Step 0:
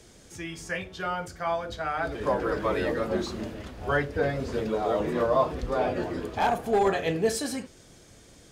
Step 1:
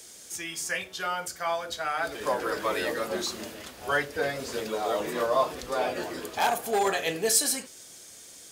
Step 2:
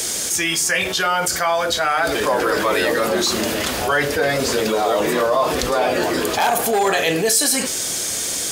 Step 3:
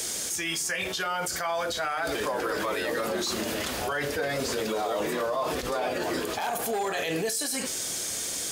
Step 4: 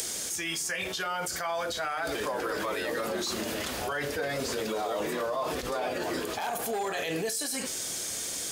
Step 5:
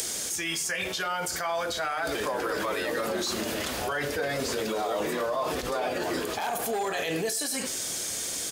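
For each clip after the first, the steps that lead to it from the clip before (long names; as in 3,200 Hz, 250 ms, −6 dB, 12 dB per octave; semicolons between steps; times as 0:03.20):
RIAA equalisation recording
envelope flattener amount 70%; level +4.5 dB
brickwall limiter −11.5 dBFS, peak gain reduction 9.5 dB; level −8.5 dB
upward compression, threshold −31 dBFS; level −2.5 dB
far-end echo of a speakerphone 100 ms, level −15 dB; level +2 dB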